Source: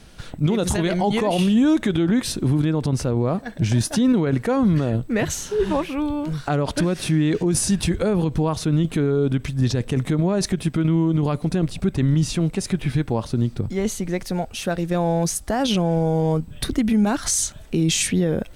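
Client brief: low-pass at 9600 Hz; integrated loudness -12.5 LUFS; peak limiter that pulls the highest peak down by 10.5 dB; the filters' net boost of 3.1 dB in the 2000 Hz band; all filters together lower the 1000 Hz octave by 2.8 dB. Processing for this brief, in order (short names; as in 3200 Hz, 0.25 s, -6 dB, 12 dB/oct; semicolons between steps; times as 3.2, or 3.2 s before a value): LPF 9600 Hz; bell 1000 Hz -5 dB; bell 2000 Hz +5.5 dB; gain +16 dB; limiter -3.5 dBFS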